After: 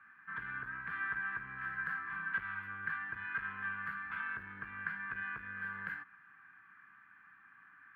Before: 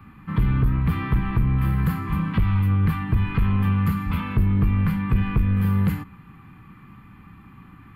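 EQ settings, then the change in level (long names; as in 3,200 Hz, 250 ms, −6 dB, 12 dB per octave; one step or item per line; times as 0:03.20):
resonant band-pass 1,600 Hz, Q 16
+9.0 dB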